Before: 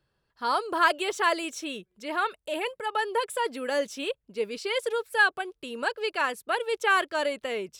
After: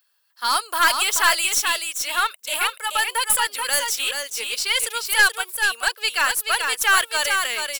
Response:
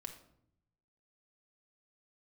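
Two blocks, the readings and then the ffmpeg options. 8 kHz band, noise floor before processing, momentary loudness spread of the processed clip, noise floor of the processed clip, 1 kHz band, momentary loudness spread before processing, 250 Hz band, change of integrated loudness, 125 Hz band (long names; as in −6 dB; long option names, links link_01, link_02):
+20.5 dB, −79 dBFS, 6 LU, −66 dBFS, +4.5 dB, 10 LU, −9.5 dB, +8.0 dB, can't be measured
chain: -filter_complex "[0:a]highpass=980,aemphasis=mode=production:type=riaa,asplit=2[link_01][link_02];[link_02]aeval=exprs='sgn(val(0))*max(abs(val(0))-0.0119,0)':channel_layout=same,volume=-4dB[link_03];[link_01][link_03]amix=inputs=2:normalize=0,aeval=exprs='(tanh(5.62*val(0)+0.2)-tanh(0.2))/5.62':channel_layout=same,aecho=1:1:431:0.562,volume=4.5dB"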